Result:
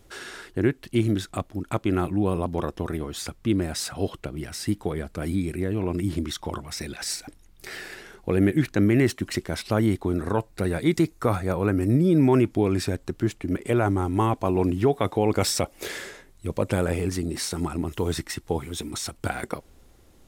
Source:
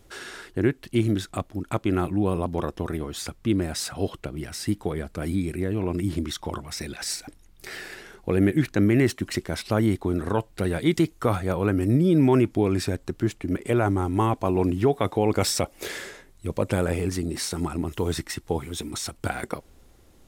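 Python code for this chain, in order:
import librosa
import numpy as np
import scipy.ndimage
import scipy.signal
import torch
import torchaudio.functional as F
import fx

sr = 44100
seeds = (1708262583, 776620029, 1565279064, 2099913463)

y = fx.peak_eq(x, sr, hz=3100.0, db=-8.5, octaves=0.22, at=(10.15, 12.34))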